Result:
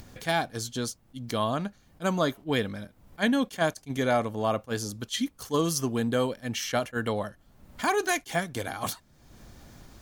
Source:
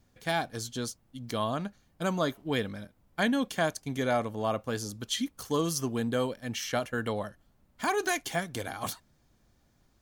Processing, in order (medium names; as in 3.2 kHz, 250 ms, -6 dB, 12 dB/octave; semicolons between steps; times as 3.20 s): upward compressor, threshold -38 dBFS; attacks held to a fixed rise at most 420 dB/s; trim +3 dB